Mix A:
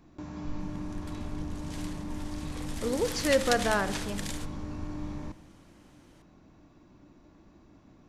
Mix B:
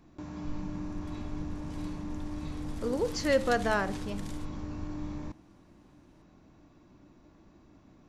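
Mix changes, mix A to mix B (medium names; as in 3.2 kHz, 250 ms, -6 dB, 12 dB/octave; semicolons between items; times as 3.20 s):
background -11.0 dB; reverb: off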